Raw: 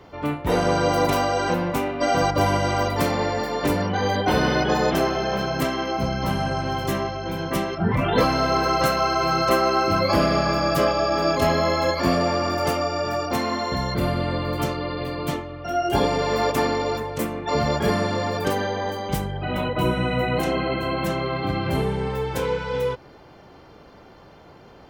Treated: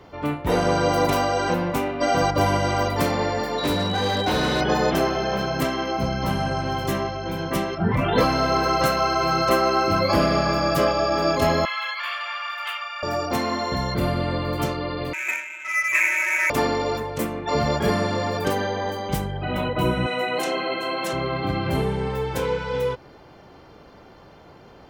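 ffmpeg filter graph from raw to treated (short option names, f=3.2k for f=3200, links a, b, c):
-filter_complex "[0:a]asettb=1/sr,asplit=3[a][b][c];[a]atrim=end=3.584[d];[b]atrim=start=3.58:end=4.61,asetpts=PTS-STARTPTS,afade=t=in:d=0.004:c=qsin,afade=t=out:st=1.026:d=0.004:c=qsin,aeval=exprs='val(0)+0.0355*sin(2*PI*3900*n/s)':c=same,volume=18dB,asoftclip=hard,volume=-18dB[e];[c]atrim=start=4.606[f];[d][e]acrossfade=d=0.004:c1=hsin:c2=qsin[g];[g][f]acrossfade=d=0.004:c1=qsin:c2=hsin,asettb=1/sr,asplit=3[h][i][j];[h]atrim=end=11.654[k];[i]atrim=start=11.65:end=13.03,asetpts=PTS-STARTPTS,afade=t=in:d=0.004:c=qsin,afade=t=out:st=1.376:d=0.004:c=qsin,highpass=f=1.2k:w=0.5412,highpass=f=1.2k:w=1.3066,highshelf=f=4.2k:t=q:w=3:g=-9.5[l];[j]atrim=start=13.026[m];[k][l]acrossfade=d=0.004:c1=hsin:c2=qsin[n];[n][m]acrossfade=d=0.004:c1=qsin:c2=hsin,asettb=1/sr,asplit=3[o][p][q];[o]atrim=end=15.134[r];[p]atrim=start=15.13:end=16.5,asetpts=PTS-STARTPTS,afade=t=in:d=0.004:c=qsin,afade=t=out:st=1.366:d=0.004:c=qsin,lowpass=f=2.3k:t=q:w=0.5098,lowpass=f=2.3k:t=q:w=0.6013,lowpass=f=2.3k:t=q:w=0.9,lowpass=f=2.3k:t=q:w=2.563,afreqshift=-2700,adynamicsmooth=sensitivity=5.5:basefreq=1.4k,highpass=190[s];[q]atrim=start=16.496[t];[r][s]acrossfade=d=0.004:c1=hsin:c2=qsin[u];[u][t]acrossfade=d=0.004:c1=qsin:c2=hsin,asettb=1/sr,asplit=3[v][w][x];[v]atrim=end=20.064[y];[w]atrim=start=20.06:end=21.13,asetpts=PTS-STARTPTS,afade=t=in:d=0.004:c=qsin,afade=t=out:st=1.066:d=0.004:c=qsin,highpass=350,lowpass=7.3k,aemphasis=mode=production:type=50fm[z];[x]atrim=start=21.126[aa];[y][z]acrossfade=d=0.004:c1=hsin:c2=qsin[ab];[ab][aa]acrossfade=d=0.004:c1=qsin:c2=hsin"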